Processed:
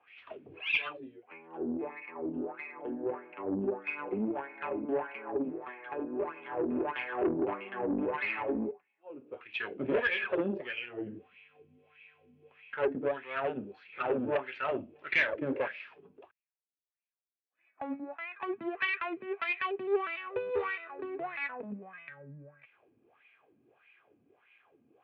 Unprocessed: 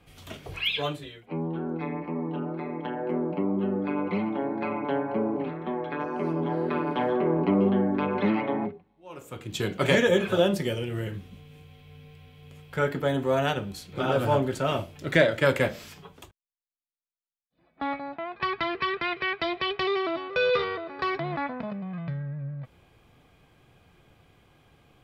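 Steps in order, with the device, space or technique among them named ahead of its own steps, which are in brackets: wah-wah guitar rig (wah 1.6 Hz 230–2400 Hz, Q 4.5; tube stage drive 29 dB, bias 0.45; speaker cabinet 87–3800 Hz, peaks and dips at 170 Hz -7 dB, 410 Hz +4 dB, 1700 Hz +4 dB, 2600 Hz +10 dB); gain +4.5 dB

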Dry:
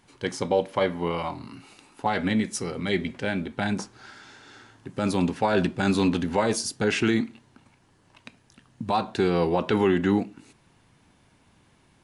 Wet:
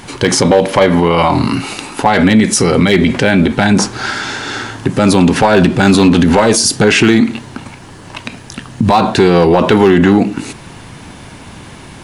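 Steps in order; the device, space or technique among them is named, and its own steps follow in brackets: loud club master (compressor 1.5:1, threshold -29 dBFS, peak gain reduction 4.5 dB; hard clip -20 dBFS, distortion -19 dB; maximiser +28.5 dB); gain -1 dB

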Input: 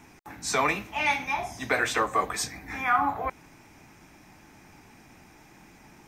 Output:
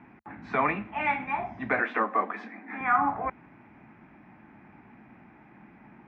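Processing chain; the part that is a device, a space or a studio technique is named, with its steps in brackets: bass cabinet (speaker cabinet 68–2200 Hz, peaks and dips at 82 Hz -7 dB, 220 Hz +7 dB, 460 Hz -4 dB); 1.8–2.81 elliptic high-pass 210 Hz

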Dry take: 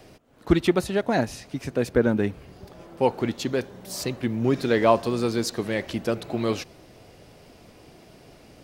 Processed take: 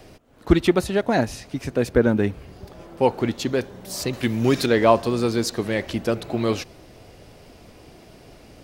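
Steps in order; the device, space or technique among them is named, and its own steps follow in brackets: 4.13–4.66 high shelf 2000 Hz +11.5 dB; low shelf boost with a cut just above (low shelf 110 Hz +5.5 dB; bell 150 Hz -2.5 dB 0.85 oct); gain +2.5 dB

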